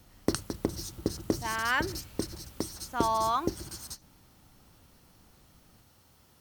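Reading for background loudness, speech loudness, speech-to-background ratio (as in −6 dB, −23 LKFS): −36.0 LKFS, −31.0 LKFS, 5.0 dB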